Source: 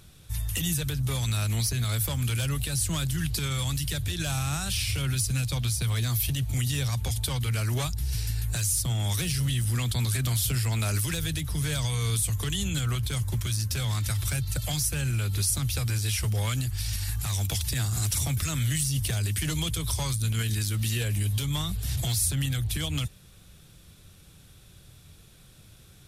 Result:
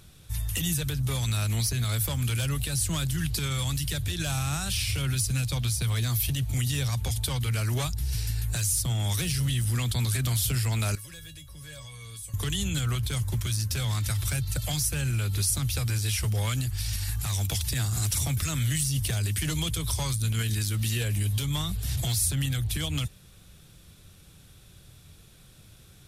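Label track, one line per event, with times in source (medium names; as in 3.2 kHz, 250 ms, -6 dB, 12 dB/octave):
10.950000	12.340000	feedback comb 560 Hz, decay 0.17 s, mix 90%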